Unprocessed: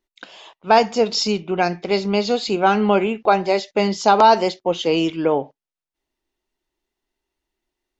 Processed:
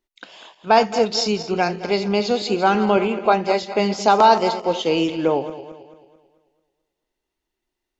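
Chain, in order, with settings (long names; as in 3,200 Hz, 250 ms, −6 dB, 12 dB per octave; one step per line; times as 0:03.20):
feedback delay that plays each chunk backwards 110 ms, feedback 64%, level −12 dB
level −1 dB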